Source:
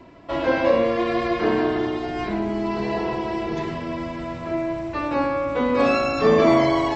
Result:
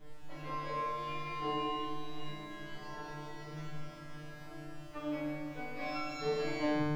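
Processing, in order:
turntable brake at the end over 0.36 s
background noise brown −32 dBFS
tuned comb filter 150 Hz, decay 1.6 s, mix 100%
level +5.5 dB

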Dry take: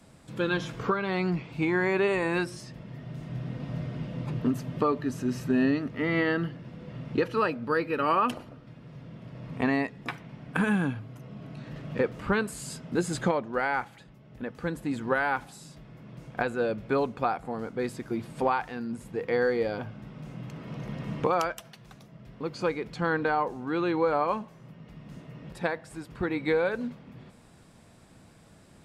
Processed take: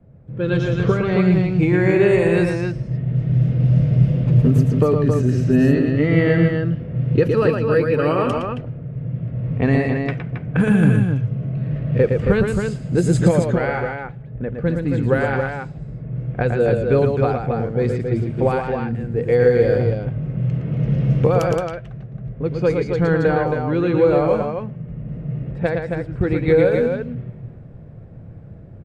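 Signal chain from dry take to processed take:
graphic EQ with 10 bands 125 Hz +9 dB, 250 Hz −4 dB, 500 Hz +6 dB, 1,000 Hz −10 dB, 4,000 Hz −5 dB
loudspeakers that aren't time-aligned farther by 39 metres −5 dB, 93 metres −5 dB
automatic gain control gain up to 7.5 dB
low-pass that shuts in the quiet parts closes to 1,200 Hz, open at −12 dBFS
low-shelf EQ 110 Hz +11 dB
level −1 dB

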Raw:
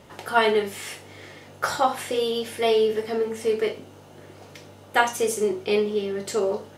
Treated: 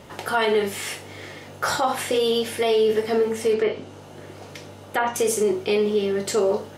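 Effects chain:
0:03.53–0:05.16: treble cut that deepens with the level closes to 2,100 Hz, closed at −18.5 dBFS
brickwall limiter −17.5 dBFS, peak gain reduction 11 dB
level +5 dB

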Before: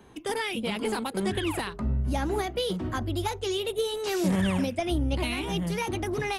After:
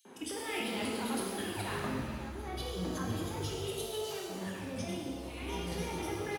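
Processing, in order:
three-band delay without the direct sound highs, mids, lows 50/190 ms, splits 160/3,700 Hz
compressor whose output falls as the input rises −36 dBFS, ratio −1
high-pass filter 59 Hz
reverb with rising layers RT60 1.7 s, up +7 semitones, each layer −8 dB, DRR −2 dB
level −6 dB

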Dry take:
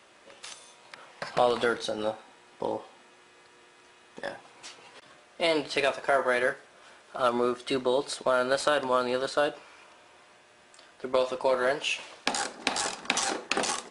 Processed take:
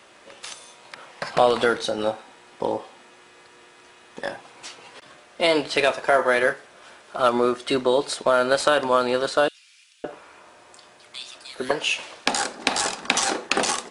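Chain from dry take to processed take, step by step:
0:09.48–0:11.71: multiband delay without the direct sound highs, lows 560 ms, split 2,500 Hz
level +6 dB

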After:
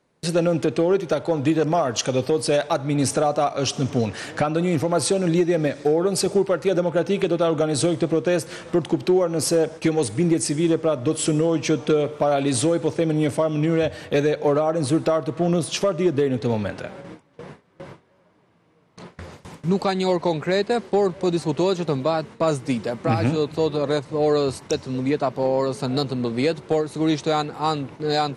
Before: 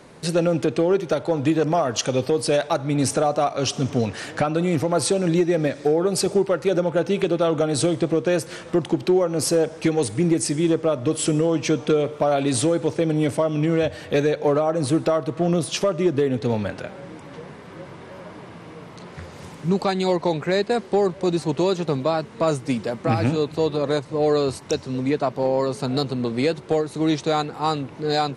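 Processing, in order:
noise gate with hold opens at −28 dBFS

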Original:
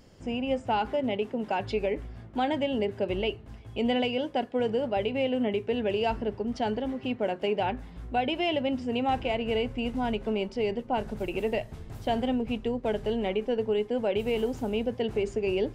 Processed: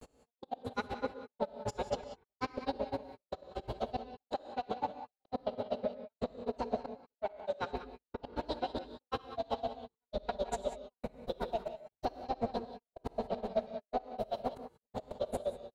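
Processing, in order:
parametric band 440 Hz +8 dB 0.55 octaves
brickwall limiter −23.5 dBFS, peak gain reduction 12 dB
downward compressor, threshold −33 dBFS, peak gain reduction 6.5 dB
soft clipping −27 dBFS, distortion −25 dB
delay with a low-pass on its return 233 ms, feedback 74%, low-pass 3,300 Hz, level −5 dB
granular cloud 69 ms, grains 7.9 per second, spray 22 ms, pitch spread up and down by 0 semitones
gate pattern "x...x.xxx" 140 BPM −60 dB
reverb whose tail is shaped and stops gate 210 ms rising, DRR 9.5 dB
formants moved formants +6 semitones
level +4.5 dB

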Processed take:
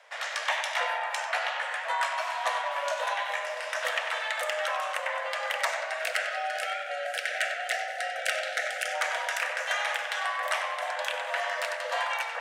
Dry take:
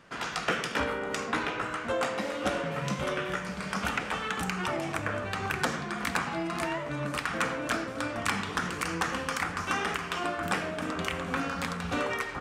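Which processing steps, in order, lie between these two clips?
time-frequency box erased 0:05.99–0:08.94, 400–830 Hz
tape delay 95 ms, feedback 73%, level −7 dB, low-pass 3,500 Hz
frequency shifter +430 Hz

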